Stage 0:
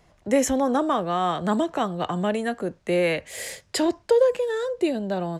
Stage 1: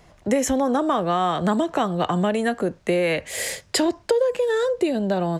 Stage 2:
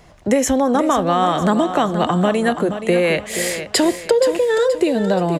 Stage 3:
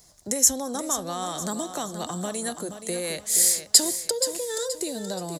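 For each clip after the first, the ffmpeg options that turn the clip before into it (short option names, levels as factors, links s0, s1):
-af "acompressor=threshold=0.0631:ratio=5,volume=2.11"
-af "aecho=1:1:476|952|1428|1904:0.316|0.12|0.0457|0.0174,volume=1.68"
-af "aexciter=amount=13.5:drive=1.8:freq=4100,volume=0.178"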